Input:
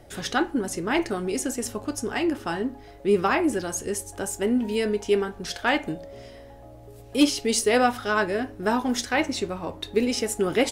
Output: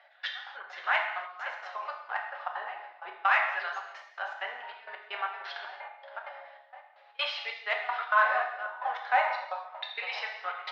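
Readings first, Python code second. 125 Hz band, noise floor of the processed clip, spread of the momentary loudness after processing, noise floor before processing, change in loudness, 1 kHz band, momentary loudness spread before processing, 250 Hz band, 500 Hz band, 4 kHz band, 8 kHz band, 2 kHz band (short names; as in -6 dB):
under -40 dB, -58 dBFS, 17 LU, -46 dBFS, -6.0 dB, -1.0 dB, 10 LU, under -40 dB, -15.5 dB, -7.0 dB, under -30 dB, -0.5 dB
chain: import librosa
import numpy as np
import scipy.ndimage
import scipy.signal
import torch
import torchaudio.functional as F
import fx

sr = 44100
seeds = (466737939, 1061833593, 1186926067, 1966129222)

p1 = scipy.signal.sosfilt(scipy.signal.ellip(3, 1.0, 40, [680.0, 4200.0], 'bandpass', fs=sr, output='sos'), x)
p2 = 10.0 ** (-22.5 / 20.0) * np.tanh(p1 / 10.0 ** (-22.5 / 20.0))
p3 = p1 + (p2 * librosa.db_to_amplitude(-6.5))
p4 = fx.filter_lfo_bandpass(p3, sr, shape='saw_down', hz=0.31, low_hz=860.0, high_hz=1800.0, q=1.2)
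p5 = p4 + fx.echo_filtered(p4, sr, ms=518, feedback_pct=23, hz=2700.0, wet_db=-11, dry=0)
p6 = fx.step_gate(p5, sr, bpm=194, pattern='x..x..xx.xxx', floor_db=-24.0, edge_ms=4.5)
p7 = fx.rev_gated(p6, sr, seeds[0], gate_ms=320, shape='falling', drr_db=1.0)
y = fx.cheby_harmonics(p7, sr, harmonics=(5,), levels_db=(-44,), full_scale_db=-10.0)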